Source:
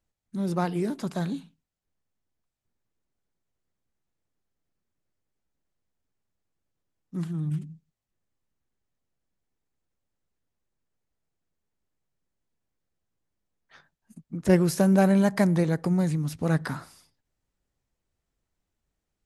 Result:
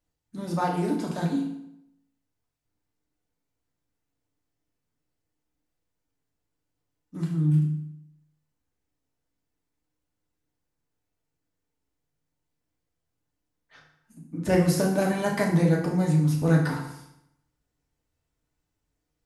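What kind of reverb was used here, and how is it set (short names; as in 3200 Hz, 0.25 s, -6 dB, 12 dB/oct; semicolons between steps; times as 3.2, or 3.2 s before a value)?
FDN reverb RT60 0.79 s, low-frequency decay 1.05×, high-frequency decay 0.8×, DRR -2.5 dB; gain -2.5 dB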